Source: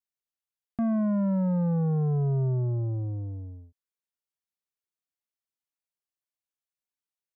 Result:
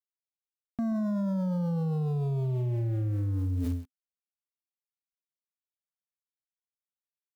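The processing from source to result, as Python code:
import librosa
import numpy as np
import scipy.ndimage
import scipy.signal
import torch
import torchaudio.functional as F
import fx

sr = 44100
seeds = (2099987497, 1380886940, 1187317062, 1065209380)

p1 = fx.law_mismatch(x, sr, coded='A')
p2 = np.clip(10.0 ** (32.0 / 20.0) * p1, -1.0, 1.0) / 10.0 ** (32.0 / 20.0)
p3 = p1 + F.gain(torch.from_numpy(p2), -8.0).numpy()
p4 = fx.peak_eq(p3, sr, hz=260.0, db=6.5, octaves=0.26)
p5 = p4 + 10.0 ** (-13.5 / 20.0) * np.pad(p4, (int(129 * sr / 1000.0), 0))[:len(p4)]
p6 = fx.env_flatten(p5, sr, amount_pct=100)
y = F.gain(torch.from_numpy(p6), -7.0).numpy()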